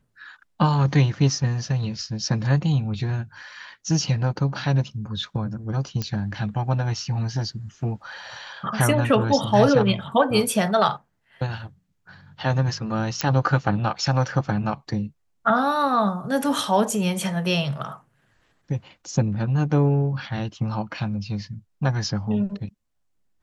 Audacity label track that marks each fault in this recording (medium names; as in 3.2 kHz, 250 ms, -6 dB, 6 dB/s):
6.020000	6.020000	pop -13 dBFS
13.210000	13.210000	pop -7 dBFS